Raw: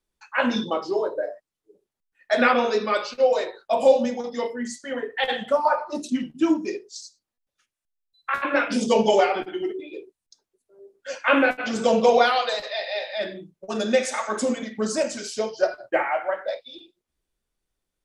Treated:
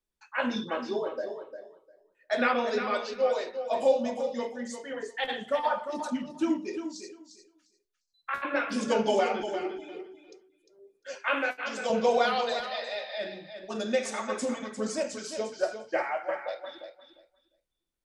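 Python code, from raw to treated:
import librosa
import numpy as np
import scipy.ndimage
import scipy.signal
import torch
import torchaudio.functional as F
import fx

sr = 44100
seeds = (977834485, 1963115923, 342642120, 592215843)

p1 = fx.highpass(x, sr, hz=700.0, slope=6, at=(11.28, 11.9))
p2 = p1 + fx.echo_feedback(p1, sr, ms=351, feedback_pct=17, wet_db=-9.0, dry=0)
y = p2 * librosa.db_to_amplitude(-7.0)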